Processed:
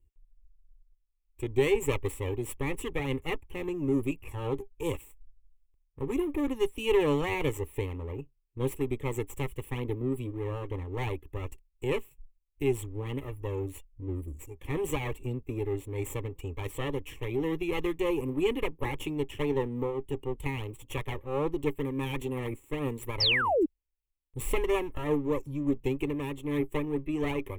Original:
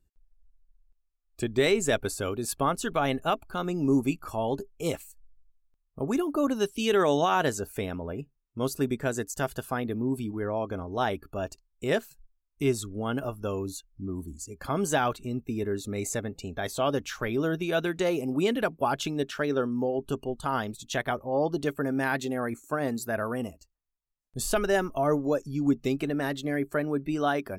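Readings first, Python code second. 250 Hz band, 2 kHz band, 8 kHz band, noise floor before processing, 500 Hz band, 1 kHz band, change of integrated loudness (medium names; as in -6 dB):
-3.5 dB, -3.5 dB, -9.0 dB, -76 dBFS, -2.5 dB, -7.5 dB, -3.0 dB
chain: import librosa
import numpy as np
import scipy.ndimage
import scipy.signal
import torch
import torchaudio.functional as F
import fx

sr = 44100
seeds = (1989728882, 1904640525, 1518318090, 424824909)

y = fx.lower_of_two(x, sr, delay_ms=0.39)
y = fx.low_shelf(y, sr, hz=300.0, db=9.0)
y = fx.fixed_phaser(y, sr, hz=1000.0, stages=8)
y = fx.spec_paint(y, sr, seeds[0], shape='fall', start_s=23.2, length_s=0.46, low_hz=280.0, high_hz=5700.0, level_db=-21.0)
y = fx.am_noise(y, sr, seeds[1], hz=5.7, depth_pct=60)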